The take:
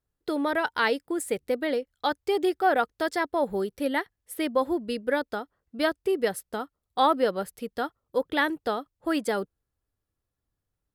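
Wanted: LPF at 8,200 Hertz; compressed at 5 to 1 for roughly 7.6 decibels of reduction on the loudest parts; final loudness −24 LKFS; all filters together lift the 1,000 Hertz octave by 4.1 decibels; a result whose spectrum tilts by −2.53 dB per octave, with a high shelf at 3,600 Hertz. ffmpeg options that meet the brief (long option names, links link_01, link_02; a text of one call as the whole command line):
ffmpeg -i in.wav -af "lowpass=8200,equalizer=frequency=1000:width_type=o:gain=6,highshelf=frequency=3600:gain=-6.5,acompressor=threshold=-22dB:ratio=5,volume=5.5dB" out.wav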